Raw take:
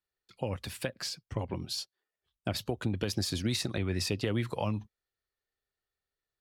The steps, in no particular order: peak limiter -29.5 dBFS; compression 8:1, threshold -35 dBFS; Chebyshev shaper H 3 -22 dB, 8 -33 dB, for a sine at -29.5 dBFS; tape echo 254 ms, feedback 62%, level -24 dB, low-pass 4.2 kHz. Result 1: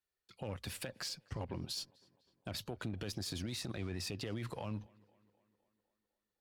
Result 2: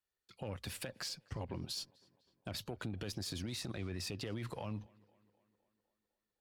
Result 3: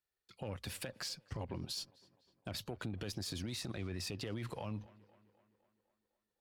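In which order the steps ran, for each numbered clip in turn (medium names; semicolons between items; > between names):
peak limiter > Chebyshev shaper > compression > tape echo; peak limiter > compression > Chebyshev shaper > tape echo; tape echo > peak limiter > compression > Chebyshev shaper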